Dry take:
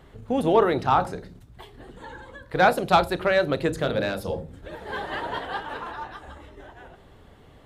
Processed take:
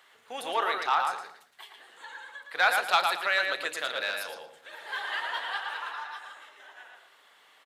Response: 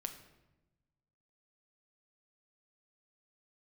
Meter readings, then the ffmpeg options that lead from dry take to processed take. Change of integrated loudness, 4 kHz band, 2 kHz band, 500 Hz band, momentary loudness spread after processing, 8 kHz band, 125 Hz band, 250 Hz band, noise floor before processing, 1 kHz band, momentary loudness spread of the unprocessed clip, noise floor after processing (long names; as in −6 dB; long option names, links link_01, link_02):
−4.5 dB, +2.5 dB, +1.5 dB, −13.0 dB, 22 LU, +2.5 dB, below −30 dB, −23.0 dB, −51 dBFS, −4.5 dB, 20 LU, −60 dBFS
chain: -filter_complex "[0:a]highpass=1400,asplit=2[link_01][link_02];[link_02]asoftclip=type=tanh:threshold=-22.5dB,volume=-10dB[link_03];[link_01][link_03]amix=inputs=2:normalize=0,asplit=2[link_04][link_05];[link_05]adelay=114,lowpass=frequency=4400:poles=1,volume=-4dB,asplit=2[link_06][link_07];[link_07]adelay=114,lowpass=frequency=4400:poles=1,volume=0.28,asplit=2[link_08][link_09];[link_09]adelay=114,lowpass=frequency=4400:poles=1,volume=0.28,asplit=2[link_10][link_11];[link_11]adelay=114,lowpass=frequency=4400:poles=1,volume=0.28[link_12];[link_04][link_06][link_08][link_10][link_12]amix=inputs=5:normalize=0"